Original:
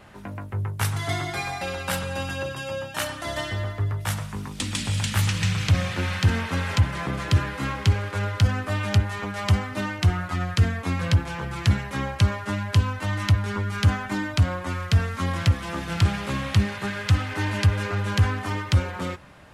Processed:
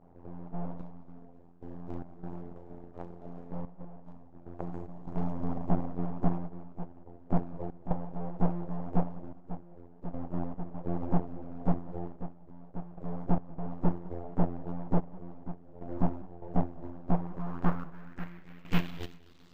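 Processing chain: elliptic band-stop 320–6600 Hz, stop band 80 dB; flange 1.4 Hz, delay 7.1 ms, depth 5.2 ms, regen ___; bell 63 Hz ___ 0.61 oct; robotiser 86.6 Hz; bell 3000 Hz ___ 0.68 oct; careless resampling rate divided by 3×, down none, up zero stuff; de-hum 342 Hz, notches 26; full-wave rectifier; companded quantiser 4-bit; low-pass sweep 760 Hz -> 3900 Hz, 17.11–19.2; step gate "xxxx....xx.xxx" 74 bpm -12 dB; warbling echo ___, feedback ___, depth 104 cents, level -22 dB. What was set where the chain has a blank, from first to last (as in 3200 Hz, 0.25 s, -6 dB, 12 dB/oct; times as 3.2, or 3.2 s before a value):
-86%, +3.5 dB, -3.5 dB, 0.2 s, 32%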